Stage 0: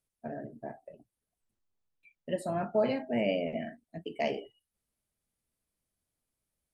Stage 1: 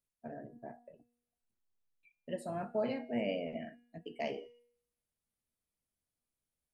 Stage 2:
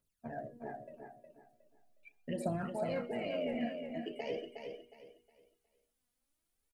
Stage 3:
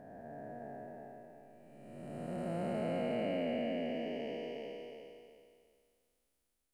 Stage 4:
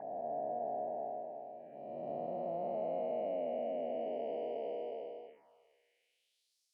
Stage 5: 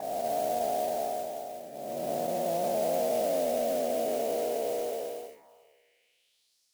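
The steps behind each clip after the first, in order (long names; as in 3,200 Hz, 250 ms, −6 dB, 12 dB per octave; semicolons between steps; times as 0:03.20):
tuned comb filter 240 Hz, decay 0.67 s, harmonics all, mix 60%; level +1 dB
brickwall limiter −33 dBFS, peak gain reduction 10.5 dB; phase shifter 0.41 Hz, delay 4.2 ms, feedback 66%; on a send: repeating echo 363 ms, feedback 28%, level −6.5 dB; on the sum: level +2.5 dB
spectrum smeared in time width 799 ms; level +4.5 dB
downward compressor 6 to 1, threshold −43 dBFS, peak gain reduction 10.5 dB; band-pass filter sweep 720 Hz → 5,100 Hz, 0:05.20–0:06.62; phaser swept by the level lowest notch 190 Hz, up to 1,500 Hz, full sweep at −58 dBFS; level +15.5 dB
noise that follows the level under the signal 14 dB; level +8.5 dB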